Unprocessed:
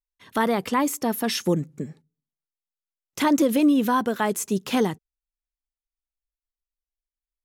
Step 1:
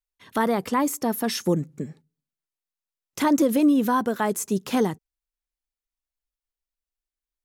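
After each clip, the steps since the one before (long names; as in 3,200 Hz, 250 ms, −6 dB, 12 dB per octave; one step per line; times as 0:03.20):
dynamic equaliser 2,900 Hz, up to −5 dB, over −43 dBFS, Q 1.2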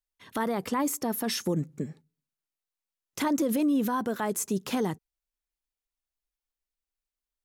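brickwall limiter −18 dBFS, peak gain reduction 6.5 dB
level −1.5 dB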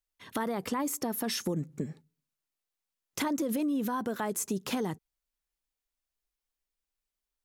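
downward compressor 3 to 1, threshold −31 dBFS, peak gain reduction 7 dB
level +1.5 dB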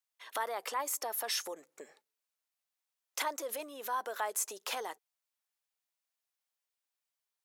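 high-pass filter 550 Hz 24 dB per octave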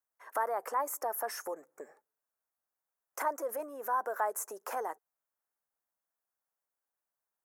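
drawn EQ curve 200 Hz 0 dB, 680 Hz +5 dB, 1,600 Hz +2 dB, 3,600 Hz −25 dB, 5,600 Hz −9 dB, 13,000 Hz −1 dB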